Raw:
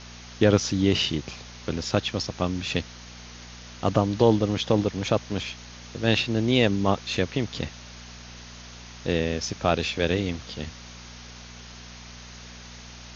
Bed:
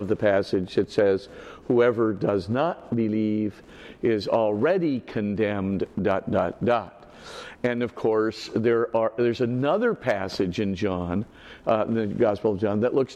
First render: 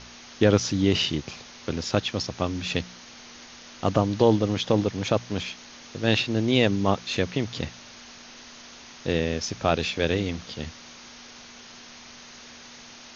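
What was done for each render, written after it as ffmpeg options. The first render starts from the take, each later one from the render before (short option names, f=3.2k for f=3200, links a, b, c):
-af "bandreject=f=60:t=h:w=4,bandreject=f=120:t=h:w=4,bandreject=f=180:t=h:w=4"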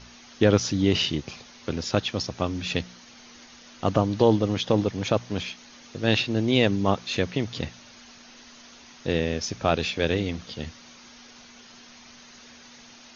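-af "afftdn=nr=6:nf=-46"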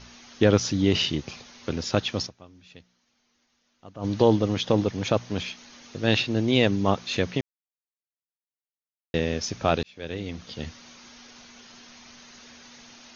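-filter_complex "[0:a]asplit=6[a][b][c][d][e][f];[a]atrim=end=2.49,asetpts=PTS-STARTPTS,afade=t=out:st=2.26:d=0.23:c=exp:silence=0.0794328[g];[b]atrim=start=2.49:end=3.82,asetpts=PTS-STARTPTS,volume=-22dB[h];[c]atrim=start=3.82:end=7.41,asetpts=PTS-STARTPTS,afade=t=in:d=0.23:c=exp:silence=0.0794328,afade=t=out:st=3.586:d=0.004:c=hsin[i];[d]atrim=start=7.41:end=9.14,asetpts=PTS-STARTPTS,volume=0[j];[e]atrim=start=9.14:end=9.83,asetpts=PTS-STARTPTS,afade=t=in:d=0.004:c=hsin,afade=t=out:st=0.686:d=0.004:c=hsin[k];[f]atrim=start=9.83,asetpts=PTS-STARTPTS,afade=t=in:d=0.82[l];[g][h][i][j][k][l]concat=n=6:v=0:a=1"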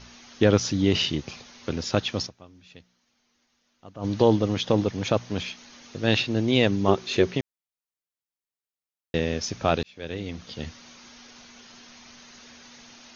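-filter_complex "[0:a]asettb=1/sr,asplit=3[a][b][c];[a]atrim=end=6.884[d];[b]atrim=start=6.88:end=7.34,asetpts=PTS-STARTPTS,afade=t=in:d=0.004:c=qsin,afade=t=out:st=0.456:d=0.004:c=qsin,equalizer=f=380:w=5.5:g=14[e];[c]atrim=start=7.336[f];[d][e]acrossfade=d=0.004:c1=hsin:c2=qsin[g];[g][f]acrossfade=d=0.004:c1=qsin:c2=hsin"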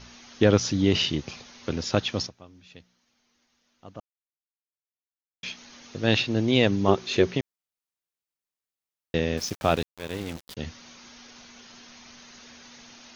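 -filter_complex "[0:a]asettb=1/sr,asplit=3[a][b][c];[a]atrim=end=9.374[d];[b]atrim=start=9.37:end=10.57,asetpts=PTS-STARTPTS,afade=t=in:d=0.004:c=qsin,afade=t=out:st=1.196:d=0.004:c=qsin,aeval=exprs='val(0)*gte(abs(val(0)),0.0168)':c=same[e];[c]atrim=start=10.566[f];[d][e]acrossfade=d=0.004:c1=hsin:c2=qsin[g];[g][f]acrossfade=d=0.004:c1=qsin:c2=hsin,asplit=3[h][i][j];[h]atrim=end=4,asetpts=PTS-STARTPTS,afade=t=out:st=3.996:d=0.004:c=hsin[k];[i]atrim=start=4:end=5.43,asetpts=PTS-STARTPTS,volume=0[l];[j]atrim=start=5.43,asetpts=PTS-STARTPTS,afade=t=in:d=0.004:c=hsin[m];[k][l][m]concat=n=3:v=0:a=1"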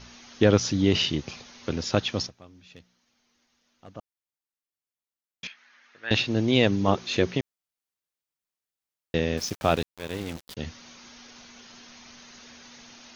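-filter_complex "[0:a]asettb=1/sr,asplit=3[a][b][c];[a]atrim=end=2.284[d];[b]atrim=start=2.28:end=3.9,asetpts=PTS-STARTPTS,afade=t=in:d=0.004:c=qsin,afade=t=out:st=1.616:d=0.004:c=qsin,asoftclip=type=hard:threshold=-36dB[e];[c]atrim=start=3.896[f];[d][e]acrossfade=d=0.004:c1=hsin:c2=qsin[g];[g][f]acrossfade=d=0.004:c1=qsin:c2=hsin,asettb=1/sr,asplit=3[h][i][j];[h]atrim=end=5.474[k];[i]atrim=start=5.47:end=6.11,asetpts=PTS-STARTPTS,afade=t=in:d=0.004:c=qsin,afade=t=out:st=0.636:d=0.004:c=qsin,bandpass=f=1.7k:t=q:w=2.7[l];[j]atrim=start=6.106[m];[k][l]acrossfade=d=0.004:c1=hsin:c2=qsin[n];[n][m]acrossfade=d=0.004:c1=qsin:c2=hsin,asettb=1/sr,asplit=3[o][p][q];[o]atrim=end=6.824[r];[p]atrim=start=6.82:end=7.33,asetpts=PTS-STARTPTS,afade=t=in:d=0.004:c=qsin,afade=t=out:st=0.506:d=0.004:c=qsin,bandreject=f=390:w=7[s];[q]atrim=start=7.326[t];[r][s]acrossfade=d=0.004:c1=hsin:c2=qsin[u];[u][t]acrossfade=d=0.004:c1=qsin:c2=hsin"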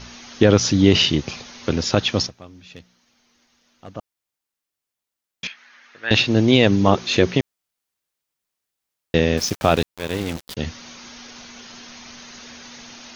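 -af "alimiter=level_in=8dB:limit=-1dB:release=50:level=0:latency=1"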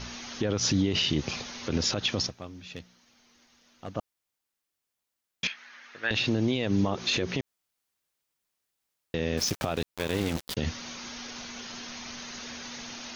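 -af "acompressor=threshold=-16dB:ratio=6,alimiter=limit=-16.5dB:level=0:latency=1:release=74"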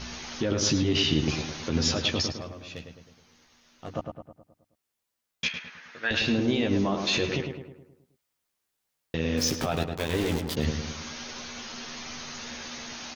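-filter_complex "[0:a]asplit=2[a][b];[b]adelay=13,volume=-5.5dB[c];[a][c]amix=inputs=2:normalize=0,asplit=2[d][e];[e]adelay=106,lowpass=f=2.1k:p=1,volume=-5dB,asplit=2[f][g];[g]adelay=106,lowpass=f=2.1k:p=1,volume=0.53,asplit=2[h][i];[i]adelay=106,lowpass=f=2.1k:p=1,volume=0.53,asplit=2[j][k];[k]adelay=106,lowpass=f=2.1k:p=1,volume=0.53,asplit=2[l][m];[m]adelay=106,lowpass=f=2.1k:p=1,volume=0.53,asplit=2[n][o];[o]adelay=106,lowpass=f=2.1k:p=1,volume=0.53,asplit=2[p][q];[q]adelay=106,lowpass=f=2.1k:p=1,volume=0.53[r];[f][h][j][l][n][p][r]amix=inputs=7:normalize=0[s];[d][s]amix=inputs=2:normalize=0"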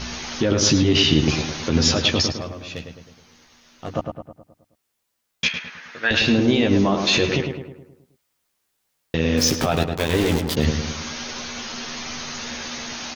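-af "volume=7.5dB"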